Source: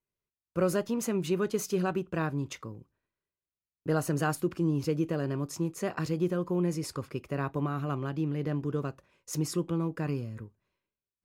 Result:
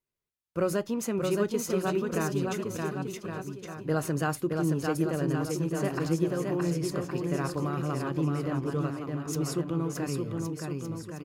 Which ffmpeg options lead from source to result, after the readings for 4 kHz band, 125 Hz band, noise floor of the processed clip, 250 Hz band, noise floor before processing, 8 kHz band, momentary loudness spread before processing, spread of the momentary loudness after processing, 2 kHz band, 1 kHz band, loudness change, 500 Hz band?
+2.0 dB, +1.5 dB, −54 dBFS, +2.0 dB, below −85 dBFS, +2.0 dB, 10 LU, 7 LU, +2.0 dB, +2.0 dB, +1.0 dB, +2.0 dB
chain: -af "bandreject=frequency=60:width_type=h:width=6,bandreject=frequency=120:width_type=h:width=6,bandreject=frequency=180:width_type=h:width=6,aecho=1:1:620|1116|1513|1830|2084:0.631|0.398|0.251|0.158|0.1"

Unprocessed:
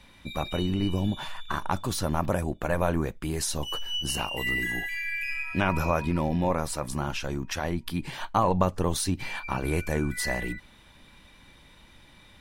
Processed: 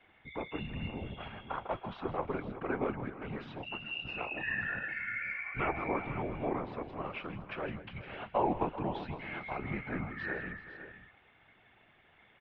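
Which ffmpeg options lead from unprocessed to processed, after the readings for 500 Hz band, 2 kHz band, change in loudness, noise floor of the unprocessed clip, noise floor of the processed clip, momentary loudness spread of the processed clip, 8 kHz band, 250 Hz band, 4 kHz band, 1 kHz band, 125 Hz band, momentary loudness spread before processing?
−7.0 dB, −5.5 dB, −8.5 dB, −54 dBFS, −65 dBFS, 9 LU, below −40 dB, −9.5 dB, −14.5 dB, −7.0 dB, −12.5 dB, 6 LU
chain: -af "afftfilt=real='hypot(re,im)*cos(2*PI*random(0))':imag='hypot(re,im)*sin(2*PI*random(1))':win_size=512:overlap=0.75,aecho=1:1:160|384|488|514:0.188|0.158|0.119|0.224,highpass=frequency=310:width_type=q:width=0.5412,highpass=frequency=310:width_type=q:width=1.307,lowpass=frequency=3100:width_type=q:width=0.5176,lowpass=frequency=3100:width_type=q:width=0.7071,lowpass=frequency=3100:width_type=q:width=1.932,afreqshift=-200"

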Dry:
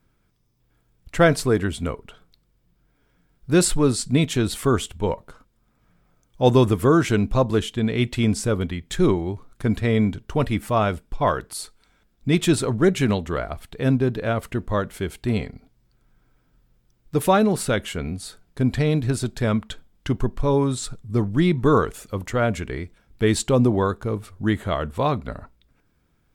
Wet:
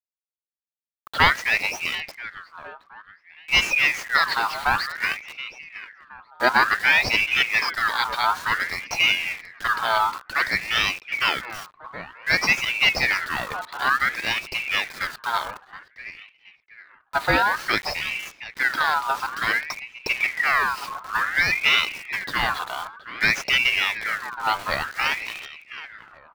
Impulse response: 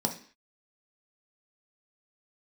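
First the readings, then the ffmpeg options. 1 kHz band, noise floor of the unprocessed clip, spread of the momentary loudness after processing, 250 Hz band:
+4.0 dB, −66 dBFS, 18 LU, −18.0 dB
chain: -filter_complex "[0:a]bandreject=frequency=60:width_type=h:width=6,bandreject=frequency=120:width_type=h:width=6,bandreject=frequency=180:width_type=h:width=6,bandreject=frequency=240:width_type=h:width=6,asplit=2[link_01][link_02];[link_02]acrusher=samples=32:mix=1:aa=0.000001:lfo=1:lforange=19.2:lforate=1.4,volume=-10.5dB[link_03];[link_01][link_03]amix=inputs=2:normalize=0,lowpass=frequency=3000:width_type=q:width=3.9,acrusher=bits=5:mix=0:aa=0.000001,asplit=2[link_04][link_05];[link_05]adelay=722,lowpass=frequency=1400:poles=1,volume=-13.5dB,asplit=2[link_06][link_07];[link_07]adelay=722,lowpass=frequency=1400:poles=1,volume=0.38,asplit=2[link_08][link_09];[link_09]adelay=722,lowpass=frequency=1400:poles=1,volume=0.38,asplit=2[link_10][link_11];[link_11]adelay=722,lowpass=frequency=1400:poles=1,volume=0.38[link_12];[link_06][link_08][link_10][link_12]amix=inputs=4:normalize=0[link_13];[link_04][link_13]amix=inputs=2:normalize=0,aeval=exprs='val(0)*sin(2*PI*1800*n/s+1800*0.4/0.55*sin(2*PI*0.55*n/s))':channel_layout=same,volume=-1dB"

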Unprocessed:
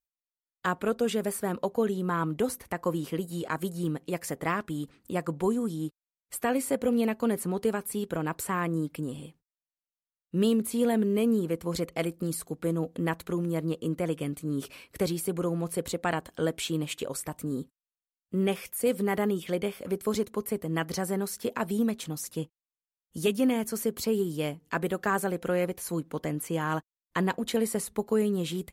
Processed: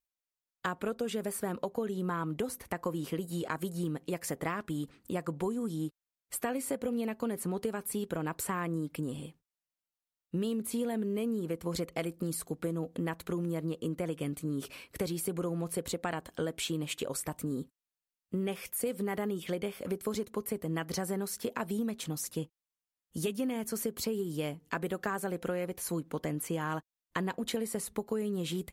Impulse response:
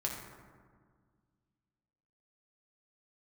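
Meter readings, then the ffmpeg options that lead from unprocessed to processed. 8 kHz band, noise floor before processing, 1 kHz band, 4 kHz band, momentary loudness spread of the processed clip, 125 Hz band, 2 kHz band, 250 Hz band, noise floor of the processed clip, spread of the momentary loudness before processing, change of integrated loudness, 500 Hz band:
−2.0 dB, below −85 dBFS, −5.5 dB, −3.5 dB, 4 LU, −4.0 dB, −5.5 dB, −5.5 dB, below −85 dBFS, 8 LU, −5.5 dB, −6.0 dB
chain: -af "acompressor=threshold=-30dB:ratio=6"

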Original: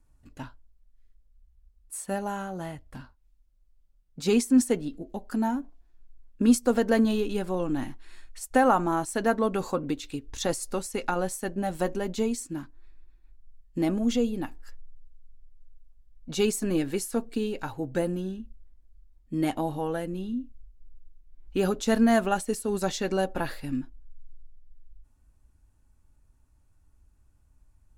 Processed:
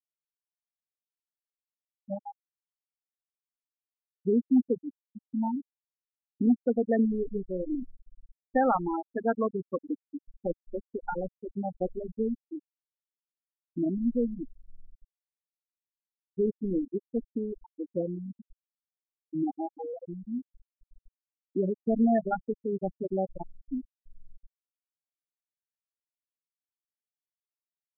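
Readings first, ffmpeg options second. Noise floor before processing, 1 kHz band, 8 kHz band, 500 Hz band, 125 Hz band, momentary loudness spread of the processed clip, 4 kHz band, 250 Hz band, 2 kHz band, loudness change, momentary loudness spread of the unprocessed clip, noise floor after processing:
−63 dBFS, −4.5 dB, below −40 dB, −3.0 dB, −5.5 dB, 14 LU, below −40 dB, −3.0 dB, −10.5 dB, −3.0 dB, 16 LU, below −85 dBFS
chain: -af "asoftclip=type=hard:threshold=-14.5dB,afftfilt=real='re*gte(hypot(re,im),0.224)':imag='im*gte(hypot(re,im),0.224)':win_size=1024:overlap=0.75,volume=-2dB"

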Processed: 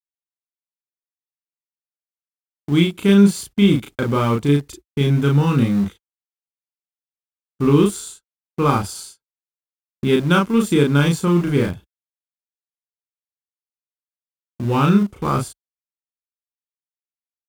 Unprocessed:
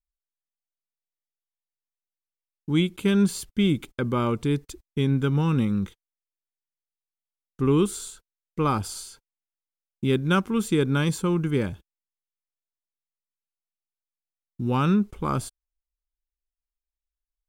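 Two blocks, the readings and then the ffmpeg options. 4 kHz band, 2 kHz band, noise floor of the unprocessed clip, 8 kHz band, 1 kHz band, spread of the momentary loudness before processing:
+6.5 dB, +7.0 dB, below −85 dBFS, +4.5 dB, +6.5 dB, 13 LU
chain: -filter_complex "[0:a]highpass=52,agate=range=-30dB:threshold=-41dB:ratio=16:detection=peak,asplit=2[link_01][link_02];[link_02]aeval=exprs='val(0)*gte(abs(val(0)),0.0422)':channel_layout=same,volume=-7dB[link_03];[link_01][link_03]amix=inputs=2:normalize=0,asplit=2[link_04][link_05];[link_05]adelay=35,volume=-2.5dB[link_06];[link_04][link_06]amix=inputs=2:normalize=0,volume=1.5dB"

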